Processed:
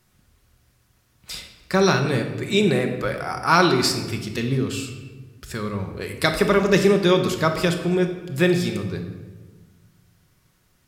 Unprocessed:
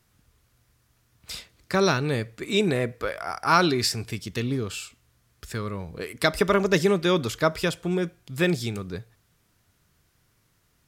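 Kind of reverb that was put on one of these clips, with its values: shoebox room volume 970 m³, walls mixed, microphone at 1 m; gain +2 dB

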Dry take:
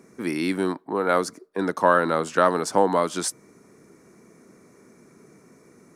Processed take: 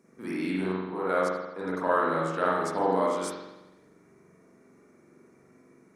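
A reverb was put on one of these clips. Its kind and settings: spring tank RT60 1 s, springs 43 ms, chirp 40 ms, DRR -6.5 dB; gain -12.5 dB

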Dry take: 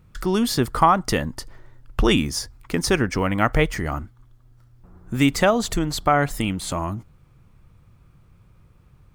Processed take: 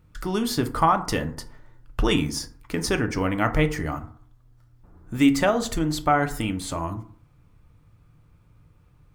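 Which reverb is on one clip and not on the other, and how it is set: FDN reverb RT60 0.53 s, low-frequency decay 1.05×, high-frequency decay 0.45×, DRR 6.5 dB; gain -4 dB

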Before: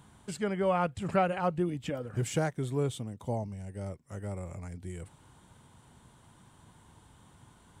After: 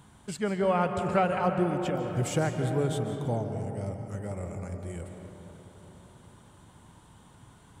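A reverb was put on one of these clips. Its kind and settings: digital reverb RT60 4.1 s, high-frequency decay 0.3×, pre-delay 0.11 s, DRR 5 dB; gain +2 dB

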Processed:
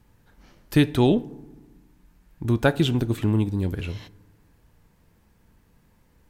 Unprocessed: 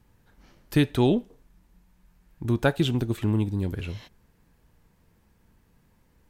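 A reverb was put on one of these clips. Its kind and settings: FDN reverb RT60 1.3 s, low-frequency decay 1.3×, high-frequency decay 0.4×, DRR 19.5 dB; gain +2.5 dB

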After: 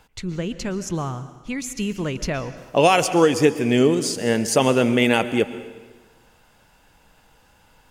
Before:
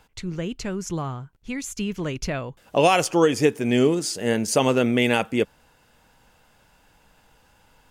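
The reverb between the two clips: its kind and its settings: plate-style reverb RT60 1.3 s, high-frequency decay 0.9×, pre-delay 0.105 s, DRR 13 dB; gain +2 dB

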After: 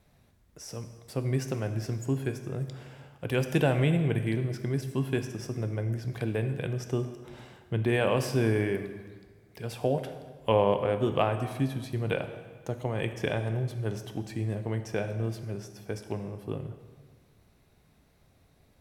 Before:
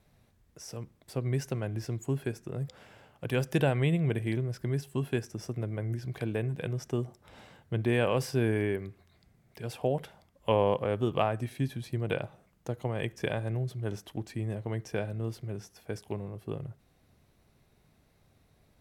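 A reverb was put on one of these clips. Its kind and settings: plate-style reverb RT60 1.5 s, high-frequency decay 0.85×, DRR 7.5 dB; gain +1.5 dB

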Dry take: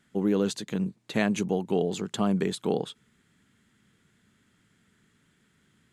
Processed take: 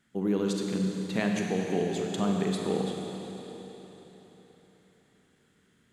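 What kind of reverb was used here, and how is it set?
Schroeder reverb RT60 4 s, combs from 32 ms, DRR 0.5 dB; gain -4 dB

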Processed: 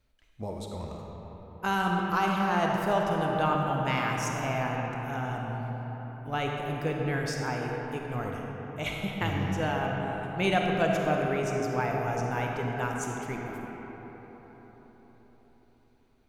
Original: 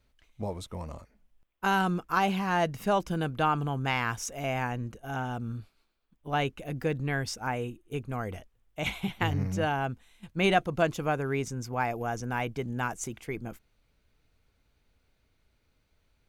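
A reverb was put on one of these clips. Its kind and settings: digital reverb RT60 4.9 s, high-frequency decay 0.45×, pre-delay 10 ms, DRR -0.5 dB; gain -2.5 dB

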